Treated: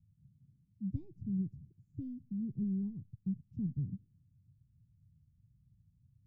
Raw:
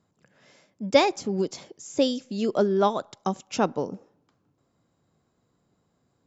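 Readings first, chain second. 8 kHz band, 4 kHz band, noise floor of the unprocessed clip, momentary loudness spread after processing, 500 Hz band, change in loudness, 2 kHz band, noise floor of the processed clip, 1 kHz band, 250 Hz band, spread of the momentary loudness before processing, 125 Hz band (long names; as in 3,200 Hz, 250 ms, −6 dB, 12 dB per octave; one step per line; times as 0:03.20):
can't be measured, below −40 dB, −72 dBFS, 10 LU, −37.5 dB, −14.0 dB, below −40 dB, −72 dBFS, below −40 dB, −8.5 dB, 13 LU, −1.5 dB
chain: inverse Chebyshev low-pass filter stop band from 560 Hz, stop band 70 dB
level +11.5 dB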